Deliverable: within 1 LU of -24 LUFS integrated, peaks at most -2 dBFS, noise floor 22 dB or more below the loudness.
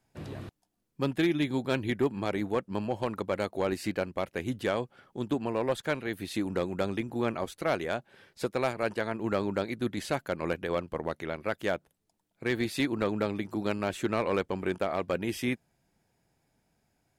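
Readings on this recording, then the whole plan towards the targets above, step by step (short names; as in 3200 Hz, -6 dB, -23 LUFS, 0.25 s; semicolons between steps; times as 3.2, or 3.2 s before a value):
clipped 0.3%; flat tops at -19.0 dBFS; loudness -31.5 LUFS; peak -19.0 dBFS; loudness target -24.0 LUFS
-> clip repair -19 dBFS; gain +7.5 dB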